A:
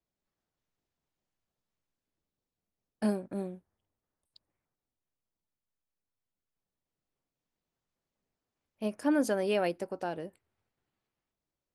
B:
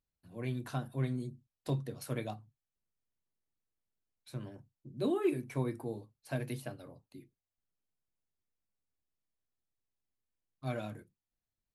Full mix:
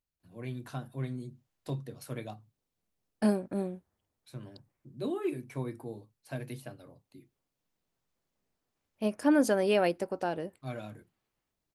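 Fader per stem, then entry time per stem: +3.0 dB, -2.0 dB; 0.20 s, 0.00 s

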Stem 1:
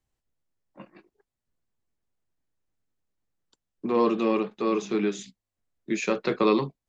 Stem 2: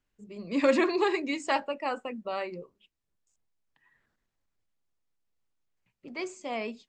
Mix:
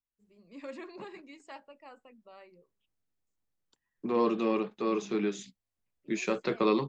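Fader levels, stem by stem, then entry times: -4.5 dB, -19.5 dB; 0.20 s, 0.00 s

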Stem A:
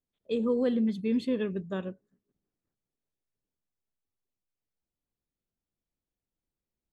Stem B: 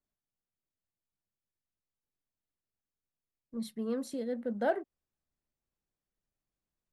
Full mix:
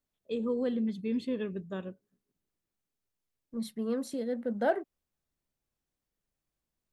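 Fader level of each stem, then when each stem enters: -4.0 dB, +2.0 dB; 0.00 s, 0.00 s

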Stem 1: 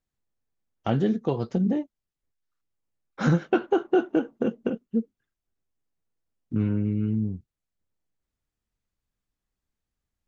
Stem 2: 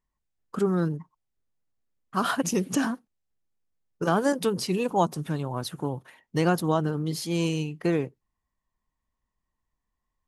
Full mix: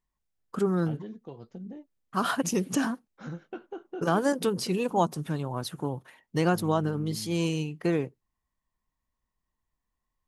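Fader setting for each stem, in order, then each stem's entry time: -17.5 dB, -1.5 dB; 0.00 s, 0.00 s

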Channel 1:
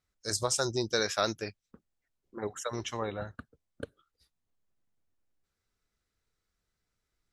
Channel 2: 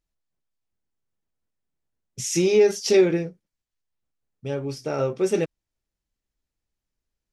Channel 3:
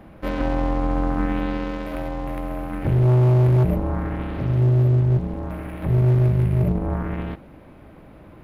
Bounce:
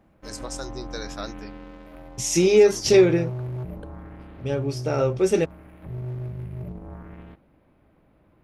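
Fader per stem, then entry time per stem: -6.5 dB, +2.0 dB, -15.0 dB; 0.00 s, 0.00 s, 0.00 s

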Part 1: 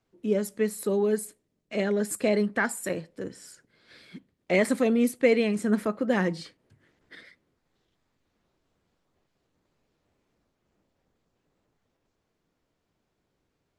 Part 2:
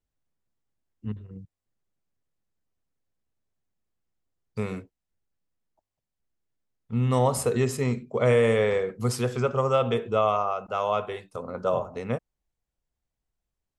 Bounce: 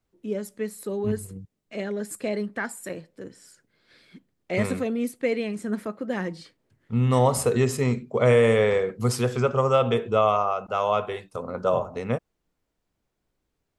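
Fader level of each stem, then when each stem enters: -4.0 dB, +2.5 dB; 0.00 s, 0.00 s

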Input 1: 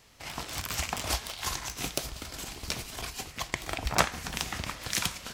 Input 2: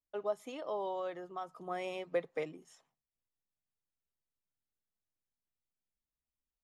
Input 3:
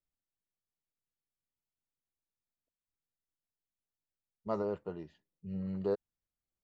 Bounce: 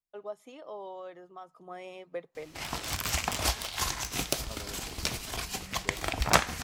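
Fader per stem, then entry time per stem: +2.0 dB, -4.5 dB, -13.5 dB; 2.35 s, 0.00 s, 0.00 s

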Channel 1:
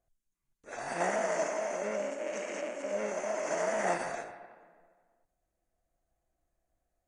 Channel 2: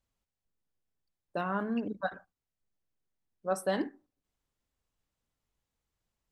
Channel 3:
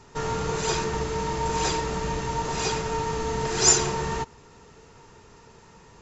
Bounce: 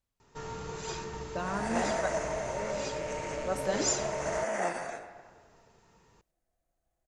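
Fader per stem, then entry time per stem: -1.0 dB, -2.5 dB, -12.0 dB; 0.75 s, 0.00 s, 0.20 s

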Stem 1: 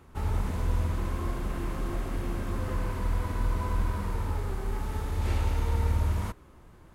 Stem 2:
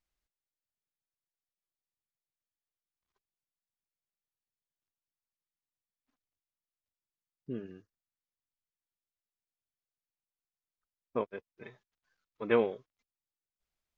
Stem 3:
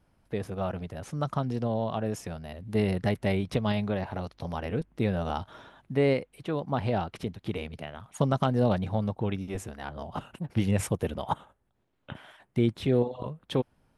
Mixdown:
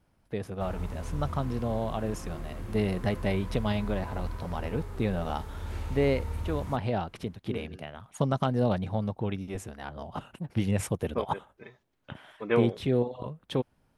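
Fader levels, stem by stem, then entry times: -8.0 dB, +1.0 dB, -1.5 dB; 0.45 s, 0.00 s, 0.00 s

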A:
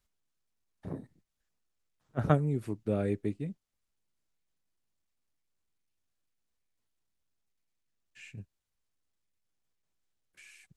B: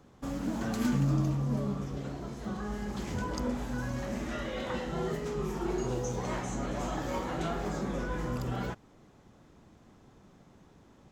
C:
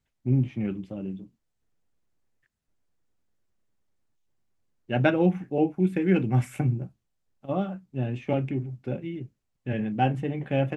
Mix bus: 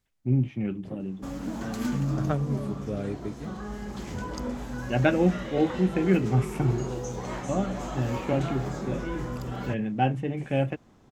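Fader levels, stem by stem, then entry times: -2.5 dB, 0.0 dB, -0.5 dB; 0.00 s, 1.00 s, 0.00 s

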